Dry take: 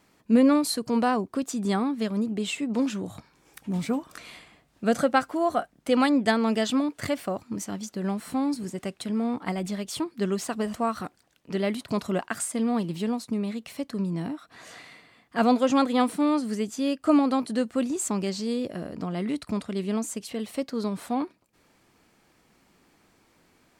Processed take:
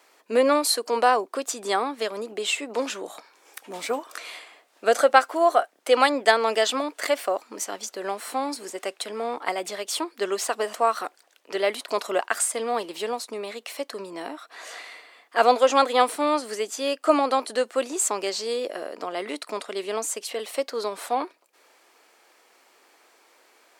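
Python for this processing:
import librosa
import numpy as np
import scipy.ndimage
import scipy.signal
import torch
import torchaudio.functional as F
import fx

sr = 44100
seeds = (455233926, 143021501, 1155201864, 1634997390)

y = scipy.signal.sosfilt(scipy.signal.butter(4, 420.0, 'highpass', fs=sr, output='sos'), x)
y = y * librosa.db_to_amplitude(6.5)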